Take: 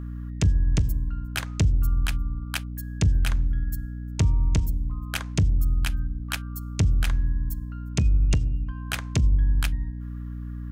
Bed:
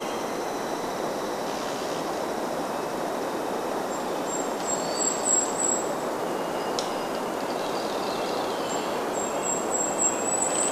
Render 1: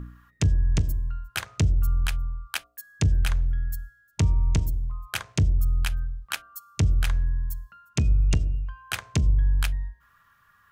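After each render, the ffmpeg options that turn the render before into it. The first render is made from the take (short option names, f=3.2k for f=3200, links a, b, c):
-af "bandreject=f=60:t=h:w=4,bandreject=f=120:t=h:w=4,bandreject=f=180:t=h:w=4,bandreject=f=240:t=h:w=4,bandreject=f=300:t=h:w=4,bandreject=f=360:t=h:w=4,bandreject=f=420:t=h:w=4,bandreject=f=480:t=h:w=4,bandreject=f=540:t=h:w=4,bandreject=f=600:t=h:w=4,bandreject=f=660:t=h:w=4,bandreject=f=720:t=h:w=4"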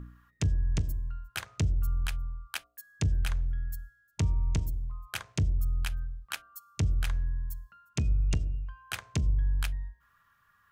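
-af "volume=-6dB"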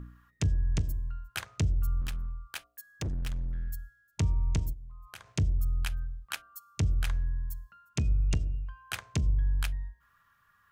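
-filter_complex "[0:a]asettb=1/sr,asplit=3[a][b][c];[a]atrim=end=2.014[d];[b]atrim=start=2.01:end=3.71,asetpts=PTS-STARTPTS,afade=t=in:d=0.004:c=qsin,afade=t=out:st=1.696:d=0.004:c=qsin,asoftclip=type=hard:threshold=-30dB[e];[c]atrim=start=3.706[f];[d][e]acrossfade=d=0.004:c1=hsin:c2=qsin[g];[g][f]acrossfade=d=0.004:c1=qsin:c2=hsin,asplit=3[h][i][j];[h]afade=t=out:st=4.72:d=0.02[k];[i]acompressor=threshold=-45dB:ratio=3:attack=3.2:release=140:knee=1:detection=peak,afade=t=in:st=4.72:d=0.02,afade=t=out:st=5.27:d=0.02[l];[j]afade=t=in:st=5.27:d=0.02[m];[k][l][m]amix=inputs=3:normalize=0"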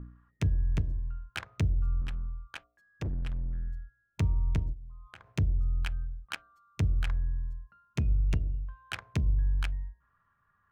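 -af "adynamicsmooth=sensitivity=4.5:basefreq=1.4k"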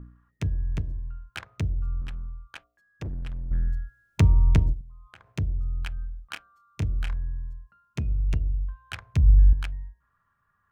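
-filter_complex "[0:a]asettb=1/sr,asplit=3[a][b][c];[a]atrim=end=5.954[d];[b]atrim=start=5.95:end=7.14,asetpts=PTS-STARTPTS,afade=t=in:d=0.004:c=qsin,afade=t=out:st=1.186:d=0.004:c=qsin,asplit=2[e][f];[f]adelay=28,volume=-9dB[g];[e][g]amix=inputs=2:normalize=0,atrim=end_sample=52479[h];[c]atrim=start=7.136[i];[d][h]acrossfade=d=0.004:c1=hsin:c2=qsin[j];[j][i]acrossfade=d=0.004:c1=qsin:c2=hsin,asettb=1/sr,asplit=3[k][l][m];[k]atrim=end=8.144[n];[l]atrim=start=8.14:end=9.53,asetpts=PTS-STARTPTS,afade=t=in:d=0.004:c=qsin,afade=t=out:st=1.386:d=0.004:c=qsin,asubboost=boost=8.5:cutoff=140[o];[m]atrim=start=9.526[p];[n][o]acrossfade=d=0.004:c1=hsin:c2=qsin[q];[q][p]acrossfade=d=0.004:c1=qsin:c2=hsin,asplit=3[r][s][t];[r]atrim=end=3.512[u];[s]atrim=start=3.508:end=4.812,asetpts=PTS-STARTPTS,volume=9.5dB[v];[t]atrim=start=4.808[w];[u][v]acrossfade=d=0.004:c1=hsin:c2=hsin[x];[x][w]acrossfade=d=0.004:c1=hsin:c2=hsin"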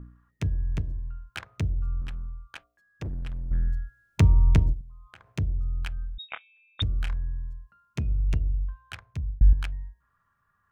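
-filter_complex "[0:a]asettb=1/sr,asplit=3[a][b][c];[a]atrim=end=6.184[d];[b]atrim=start=6.18:end=6.82,asetpts=PTS-STARTPTS,afade=t=in:d=0.004:c=qsin,afade=t=out:st=0.636:d=0.004:c=qsin,lowpass=f=3.2k:t=q:w=0.5098,lowpass=f=3.2k:t=q:w=0.6013,lowpass=f=3.2k:t=q:w=0.9,lowpass=f=3.2k:t=q:w=2.563,afreqshift=-3800[e];[c]atrim=start=6.816[f];[d][e]acrossfade=d=0.004:c1=hsin:c2=qsin[g];[g][f]acrossfade=d=0.004:c1=qsin:c2=hsin,asplit=2[h][i];[h]atrim=end=9.41,asetpts=PTS-STARTPTS,afade=t=out:st=8.68:d=0.73[j];[i]atrim=start=9.41,asetpts=PTS-STARTPTS,afade=t=in:d=0.004:c=hsin[k];[j][k]concat=n=2:v=0:a=1"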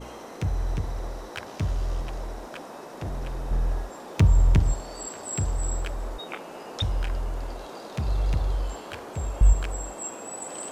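-filter_complex "[1:a]volume=-11.5dB[a];[0:a][a]amix=inputs=2:normalize=0"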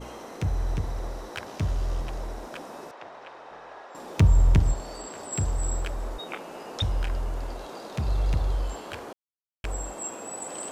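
-filter_complex "[0:a]asettb=1/sr,asplit=3[a][b][c];[a]atrim=end=2.914[d];[b]atrim=start=2.91:end=3.95,asetpts=PTS-STARTPTS,afade=t=in:d=0.004:c=qsin,afade=t=out:st=1.036:d=0.004:c=qsin,highpass=680,lowpass=3.3k[e];[c]atrim=start=3.946[f];[d][e]acrossfade=d=0.004:c1=hsin:c2=qsin[g];[g][f]acrossfade=d=0.004:c1=qsin:c2=hsin,asettb=1/sr,asplit=3[h][i][j];[h]atrim=end=4.714[k];[i]atrim=start=4.71:end=5.32,asetpts=PTS-STARTPTS,afade=t=in:d=0.004:c=qsin,afade=t=out:st=0.606:d=0.004:c=qsin,acrossover=split=5400[l][m];[m]acompressor=threshold=-46dB:ratio=4:attack=1:release=60[n];[l][n]amix=inputs=2:normalize=0[o];[j]atrim=start=5.316[p];[k][o]acrossfade=d=0.004:c1=hsin:c2=qsin[q];[q][p]acrossfade=d=0.004:c1=qsin:c2=hsin,asplit=3[r][s][t];[r]atrim=end=9.13,asetpts=PTS-STARTPTS,afade=t=out:st=9.126:d=0.004:c=hsin[u];[s]atrim=start=9.13:end=9.64,asetpts=PTS-STARTPTS,volume=0[v];[t]atrim=start=9.64,asetpts=PTS-STARTPTS,afade=t=in:d=0.004:c=hsin[w];[u][v][w]concat=n=3:v=0:a=1"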